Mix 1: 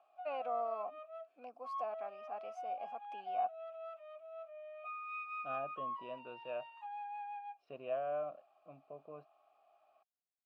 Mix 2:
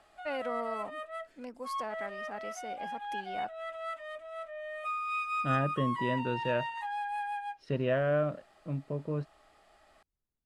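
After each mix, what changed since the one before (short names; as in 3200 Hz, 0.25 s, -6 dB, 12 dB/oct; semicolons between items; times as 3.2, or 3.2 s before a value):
first voice -6.0 dB; master: remove vowel filter a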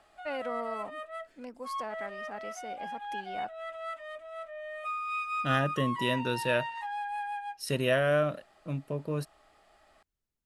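second voice: remove tape spacing loss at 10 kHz 38 dB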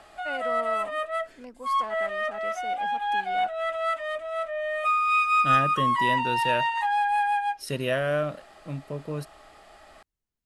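background +11.5 dB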